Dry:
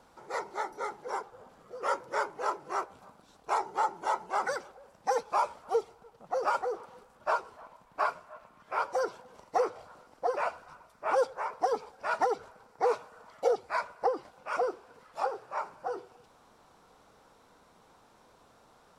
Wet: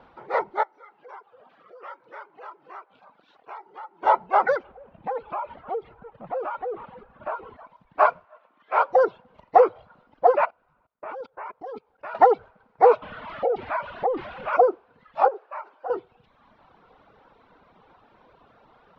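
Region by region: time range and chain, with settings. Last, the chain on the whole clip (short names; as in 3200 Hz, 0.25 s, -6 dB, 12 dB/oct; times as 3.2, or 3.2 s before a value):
0.63–4.03 compressor 2.5:1, threshold -51 dBFS + weighting filter A
4.64–7.57 G.711 law mismatch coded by mu + air absorption 280 m + compressor 5:1, threshold -36 dBFS
8.25–8.89 block floating point 5-bit + BPF 400–5800 Hz
10.45–12.15 expander -53 dBFS + bell 290 Hz +3.5 dB 1.8 oct + level quantiser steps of 21 dB
13.02–14.53 zero-crossing step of -36 dBFS + compressor 5:1, threshold -31 dBFS + air absorption 170 m
15.28–15.9 HPF 360 Hz 24 dB/oct + compressor 5:1, threshold -37 dBFS
whole clip: LPF 3300 Hz 24 dB/oct; reverb removal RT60 1.2 s; dynamic EQ 650 Hz, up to +7 dB, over -41 dBFS, Q 1.2; gain +7.5 dB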